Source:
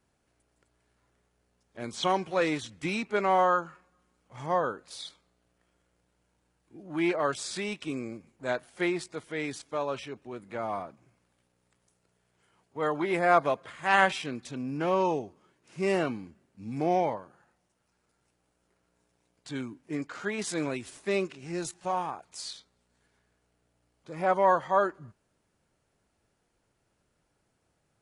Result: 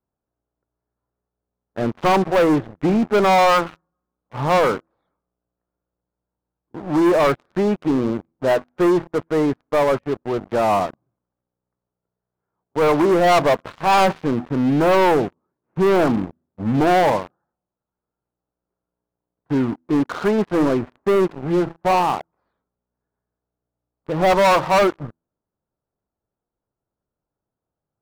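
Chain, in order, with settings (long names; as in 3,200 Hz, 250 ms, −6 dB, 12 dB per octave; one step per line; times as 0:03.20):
low-pass filter 1,300 Hz 24 dB per octave
hum removal 82.32 Hz, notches 4
leveller curve on the samples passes 5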